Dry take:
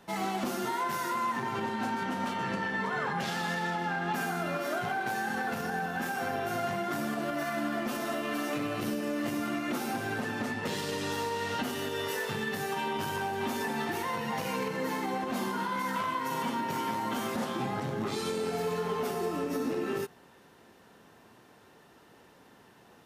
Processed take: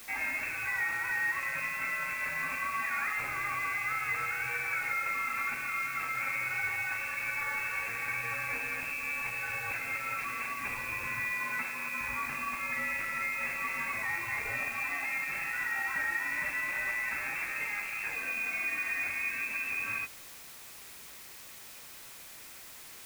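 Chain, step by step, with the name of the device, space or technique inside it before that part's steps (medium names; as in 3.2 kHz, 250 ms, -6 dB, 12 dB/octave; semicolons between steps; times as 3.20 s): scrambled radio voice (band-pass 370–3100 Hz; frequency inversion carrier 2.9 kHz; white noise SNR 14 dB); 11.32–12.01 s: high-pass 150 Hz 24 dB/octave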